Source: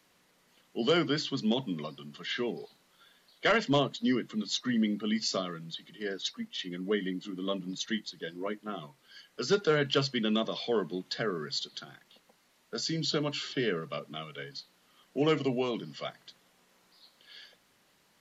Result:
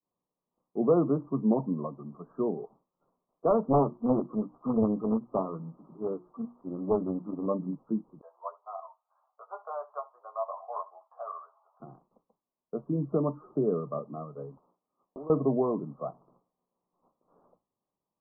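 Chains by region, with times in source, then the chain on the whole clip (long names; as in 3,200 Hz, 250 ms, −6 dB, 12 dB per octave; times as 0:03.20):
0:03.63–0:07.46: spike at every zero crossing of −33 dBFS + mains-hum notches 60/120/180/240/300/360 Hz + highs frequency-modulated by the lows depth 0.82 ms
0:08.21–0:11.80: Butterworth high-pass 670 Hz 48 dB per octave + double-tracking delay 12 ms −5.5 dB + single-tap delay 71 ms −20.5 dB
0:14.57–0:15.30: one scale factor per block 3 bits + low-shelf EQ 160 Hz −11 dB + downward compressor 8 to 1, threshold −42 dBFS
whole clip: downward expander −53 dBFS; Butterworth low-pass 1,200 Hz 96 dB per octave; level +4 dB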